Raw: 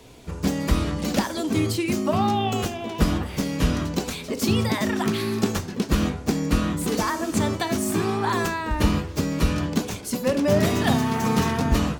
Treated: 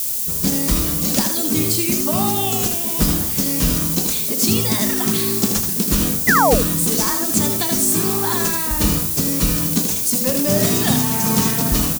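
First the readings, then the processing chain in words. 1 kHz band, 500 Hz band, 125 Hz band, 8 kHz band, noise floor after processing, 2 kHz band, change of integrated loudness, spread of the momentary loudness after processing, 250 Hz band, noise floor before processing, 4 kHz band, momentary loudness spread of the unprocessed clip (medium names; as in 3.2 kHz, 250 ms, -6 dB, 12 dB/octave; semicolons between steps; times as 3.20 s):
+3.0 dB, +2.0 dB, +2.0 dB, +15.5 dB, -22 dBFS, +5.0 dB, +7.5 dB, 2 LU, +2.5 dB, -36 dBFS, +7.5 dB, 5 LU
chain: painted sound fall, 6.27–6.55 s, 410–2100 Hz -14 dBFS; peaking EQ 75 Hz -12 dB 1.1 oct; delay 79 ms -7 dB; added noise blue -35 dBFS; tone controls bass +8 dB, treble +14 dB; trim -1 dB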